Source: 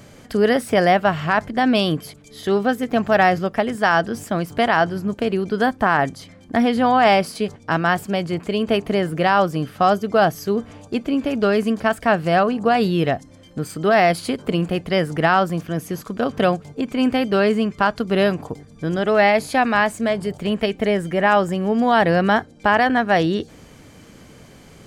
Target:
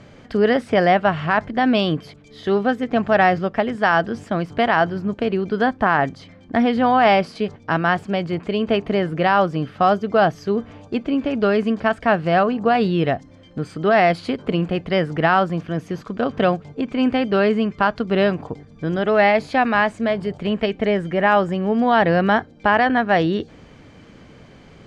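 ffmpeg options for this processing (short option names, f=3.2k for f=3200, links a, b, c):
-af "lowpass=3.9k"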